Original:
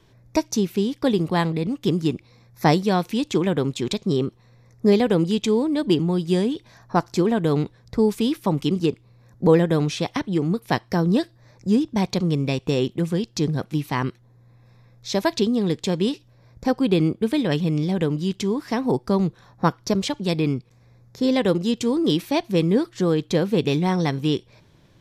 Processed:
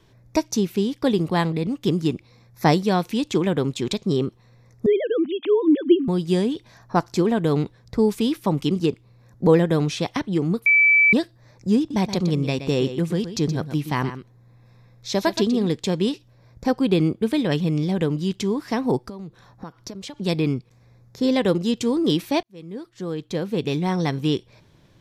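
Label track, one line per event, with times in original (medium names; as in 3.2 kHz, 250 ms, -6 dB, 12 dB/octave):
4.860000	6.080000	formants replaced by sine waves
10.660000	11.130000	bleep 2.31 kHz -12 dBFS
11.780000	15.670000	delay 123 ms -11 dB
18.970000	20.200000	compression 12:1, threshold -31 dBFS
22.430000	24.220000	fade in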